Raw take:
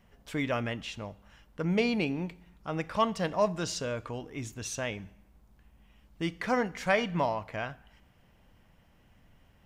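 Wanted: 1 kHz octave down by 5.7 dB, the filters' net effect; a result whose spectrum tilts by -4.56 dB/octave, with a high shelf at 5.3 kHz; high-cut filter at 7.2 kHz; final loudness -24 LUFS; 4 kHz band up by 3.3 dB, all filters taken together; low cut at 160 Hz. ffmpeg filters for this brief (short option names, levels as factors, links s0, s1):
-af "highpass=160,lowpass=7200,equalizer=f=1000:t=o:g=-7.5,equalizer=f=4000:t=o:g=9,highshelf=f=5300:g=-8,volume=2.99"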